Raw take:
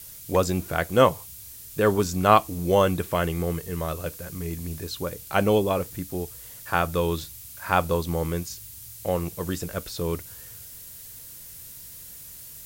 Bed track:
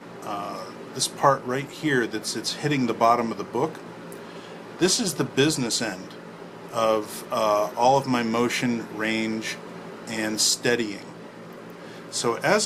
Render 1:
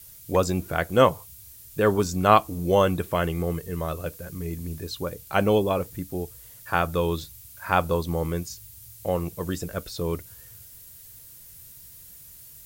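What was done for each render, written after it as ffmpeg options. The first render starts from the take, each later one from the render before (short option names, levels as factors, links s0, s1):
-af "afftdn=nr=6:nf=-43"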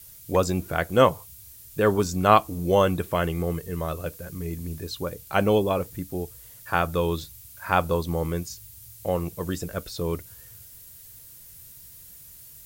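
-af anull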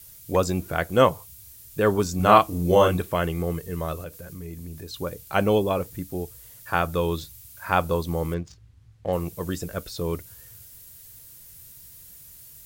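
-filter_complex "[0:a]asettb=1/sr,asplit=3[s0][s1][s2];[s0]atrim=end=2.164[s3];[s1]atrim=start=2.16:end=3.02,asetpts=PTS-STARTPTS,afade=t=in:d=0.004:c=qsin,afade=t=out:st=0.856:d=0.004:c=qsin,asplit=2[s4][s5];[s5]adelay=34,volume=0.75[s6];[s4][s6]amix=inputs=2:normalize=0,atrim=end_sample=37926[s7];[s2]atrim=start=3.016[s8];[s3][s7]acrossfade=d=0.004:c1=hsin:c2=qsin[s9];[s9][s8]acrossfade=d=0.004:c1=qsin:c2=hsin,asettb=1/sr,asplit=3[s10][s11][s12];[s10]atrim=end=4.034[s13];[s11]atrim=start=4.03:end=4.94,asetpts=PTS-STARTPTS,afade=t=in:d=0.004:c=qsin,afade=t=out:st=0.906:d=0.004:c=qsin,acompressor=threshold=0.0141:ratio=2:attack=3.2:release=140:knee=1:detection=peak[s14];[s12]atrim=start=4.936[s15];[s13][s14]acrossfade=d=0.004:c1=hsin:c2=qsin[s16];[s16][s15]acrossfade=d=0.004:c1=qsin:c2=hsin,asettb=1/sr,asplit=3[s17][s18][s19];[s17]atrim=end=8.344[s20];[s18]atrim=start=8.34:end=9.13,asetpts=PTS-STARTPTS,afade=t=in:d=0.004:c=qsin,afade=t=out:st=0.786:d=0.004:c=qsin,adynamicsmooth=sensitivity=6:basefreq=1600[s21];[s19]atrim=start=9.126[s22];[s20][s21]acrossfade=d=0.004:c1=hsin:c2=qsin[s23];[s23][s22]acrossfade=d=0.004:c1=qsin:c2=hsin"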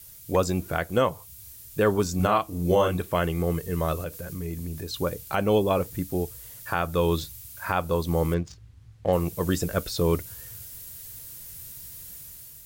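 -af "dynaudnorm=f=640:g=3:m=1.78,alimiter=limit=0.282:level=0:latency=1:release=419"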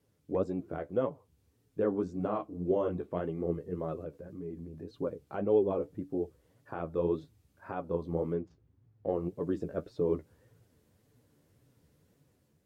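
-af "flanger=delay=6.8:depth=7.3:regen=29:speed=1.8:shape=sinusoidal,bandpass=f=330:t=q:w=1.2:csg=0"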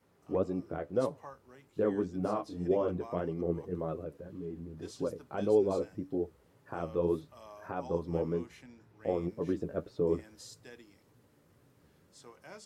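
-filter_complex "[1:a]volume=0.0335[s0];[0:a][s0]amix=inputs=2:normalize=0"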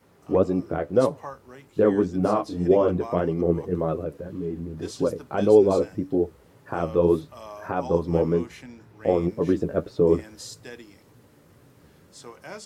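-af "volume=3.35"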